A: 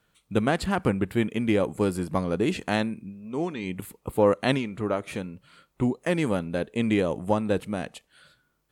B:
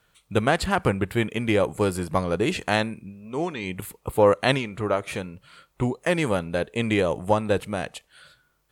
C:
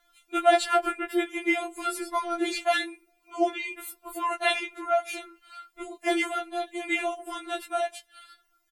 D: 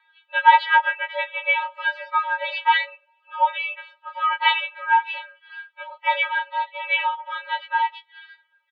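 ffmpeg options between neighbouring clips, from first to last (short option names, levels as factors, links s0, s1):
-af "equalizer=f=240:w=1.1:g=-7.5,volume=1.78"
-filter_complex "[0:a]asplit=2[s0][s1];[s1]adelay=13,volume=0.708[s2];[s0][s2]amix=inputs=2:normalize=0,afftfilt=real='re*4*eq(mod(b,16),0)':imag='im*4*eq(mod(b,16),0)':win_size=2048:overlap=0.75"
-af "highpass=f=490:t=q:w=0.5412,highpass=f=490:t=q:w=1.307,lowpass=f=3200:t=q:w=0.5176,lowpass=f=3200:t=q:w=0.7071,lowpass=f=3200:t=q:w=1.932,afreqshift=230,volume=2.24"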